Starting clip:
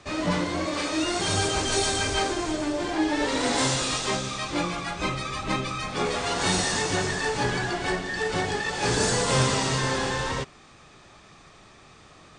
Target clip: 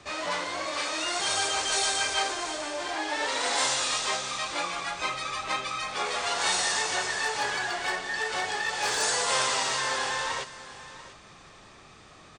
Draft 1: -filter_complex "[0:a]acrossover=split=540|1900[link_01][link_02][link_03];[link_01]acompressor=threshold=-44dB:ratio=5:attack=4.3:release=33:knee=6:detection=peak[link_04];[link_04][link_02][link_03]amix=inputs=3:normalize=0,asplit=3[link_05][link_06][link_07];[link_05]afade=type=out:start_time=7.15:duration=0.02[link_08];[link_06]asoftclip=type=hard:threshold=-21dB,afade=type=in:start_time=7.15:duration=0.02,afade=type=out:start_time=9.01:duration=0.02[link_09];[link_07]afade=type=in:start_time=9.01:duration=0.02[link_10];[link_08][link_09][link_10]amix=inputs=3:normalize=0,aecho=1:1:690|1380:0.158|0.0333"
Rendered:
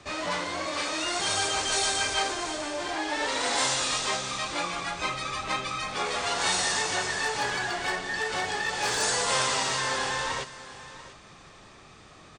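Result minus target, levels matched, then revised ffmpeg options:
downward compressor: peak gain reduction −7 dB
-filter_complex "[0:a]acrossover=split=540|1900[link_01][link_02][link_03];[link_01]acompressor=threshold=-53dB:ratio=5:attack=4.3:release=33:knee=6:detection=peak[link_04];[link_04][link_02][link_03]amix=inputs=3:normalize=0,asplit=3[link_05][link_06][link_07];[link_05]afade=type=out:start_time=7.15:duration=0.02[link_08];[link_06]asoftclip=type=hard:threshold=-21dB,afade=type=in:start_time=7.15:duration=0.02,afade=type=out:start_time=9.01:duration=0.02[link_09];[link_07]afade=type=in:start_time=9.01:duration=0.02[link_10];[link_08][link_09][link_10]amix=inputs=3:normalize=0,aecho=1:1:690|1380:0.158|0.0333"

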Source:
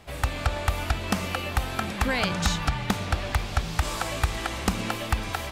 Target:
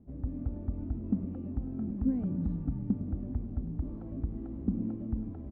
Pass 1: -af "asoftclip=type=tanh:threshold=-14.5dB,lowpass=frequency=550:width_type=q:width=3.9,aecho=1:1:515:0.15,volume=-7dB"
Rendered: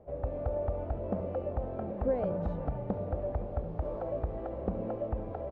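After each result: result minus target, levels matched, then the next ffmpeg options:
500 Hz band +16.5 dB; echo 190 ms late
-af "asoftclip=type=tanh:threshold=-14.5dB,lowpass=frequency=260:width_type=q:width=3.9,aecho=1:1:515:0.15,volume=-7dB"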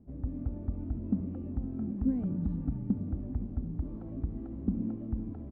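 echo 190 ms late
-af "asoftclip=type=tanh:threshold=-14.5dB,lowpass=frequency=260:width_type=q:width=3.9,aecho=1:1:325:0.15,volume=-7dB"

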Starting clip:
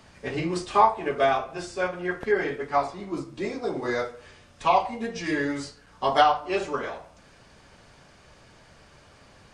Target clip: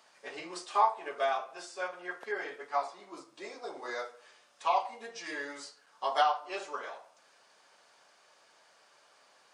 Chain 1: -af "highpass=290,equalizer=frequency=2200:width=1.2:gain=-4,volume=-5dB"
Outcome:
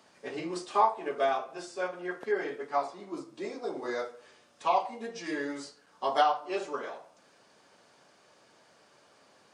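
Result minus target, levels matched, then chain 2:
250 Hz band +9.0 dB
-af "highpass=680,equalizer=frequency=2200:width=1.2:gain=-4,volume=-5dB"

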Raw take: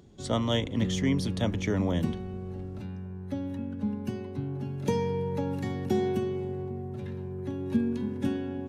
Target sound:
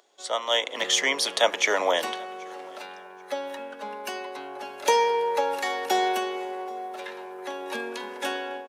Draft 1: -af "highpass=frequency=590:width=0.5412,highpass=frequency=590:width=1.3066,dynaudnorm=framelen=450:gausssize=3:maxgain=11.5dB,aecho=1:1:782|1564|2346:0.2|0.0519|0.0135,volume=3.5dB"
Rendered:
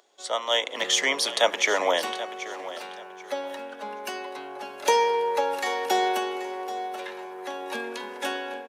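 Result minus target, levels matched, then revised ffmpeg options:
echo-to-direct +11.5 dB
-af "highpass=frequency=590:width=0.5412,highpass=frequency=590:width=1.3066,dynaudnorm=framelen=450:gausssize=3:maxgain=11.5dB,aecho=1:1:782|1564:0.0531|0.0138,volume=3.5dB"

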